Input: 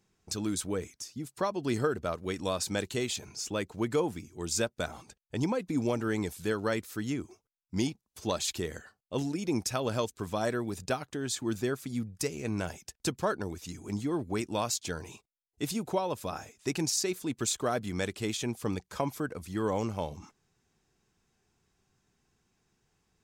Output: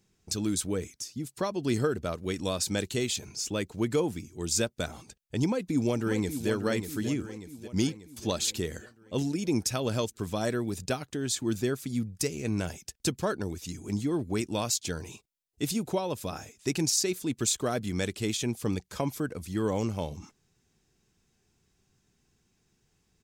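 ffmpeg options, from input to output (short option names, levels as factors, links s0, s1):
-filter_complex "[0:a]asplit=2[s0][s1];[s1]afade=t=in:st=5.47:d=0.01,afade=t=out:st=6.49:d=0.01,aecho=0:1:590|1180|1770|2360|2950|3540|4130:0.375837|0.206711|0.113691|0.0625299|0.0343915|0.0189153|0.0104034[s2];[s0][s2]amix=inputs=2:normalize=0,equalizer=f=1000:t=o:w=2:g=-6.5,volume=1.58"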